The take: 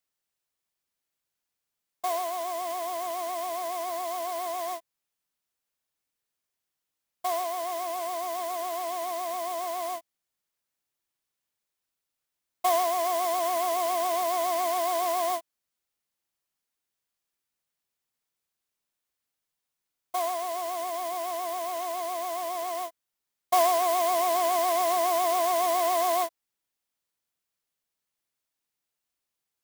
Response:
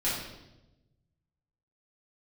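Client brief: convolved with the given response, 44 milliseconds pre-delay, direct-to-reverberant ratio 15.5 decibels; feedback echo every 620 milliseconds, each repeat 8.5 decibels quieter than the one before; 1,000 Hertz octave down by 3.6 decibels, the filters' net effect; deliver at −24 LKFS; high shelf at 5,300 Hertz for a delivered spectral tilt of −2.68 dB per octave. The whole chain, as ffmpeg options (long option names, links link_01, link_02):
-filter_complex "[0:a]equalizer=frequency=1000:width_type=o:gain=-6,highshelf=frequency=5300:gain=3.5,aecho=1:1:620|1240|1860|2480:0.376|0.143|0.0543|0.0206,asplit=2[link_01][link_02];[1:a]atrim=start_sample=2205,adelay=44[link_03];[link_02][link_03]afir=irnorm=-1:irlink=0,volume=-24dB[link_04];[link_01][link_04]amix=inputs=2:normalize=0,volume=5.5dB"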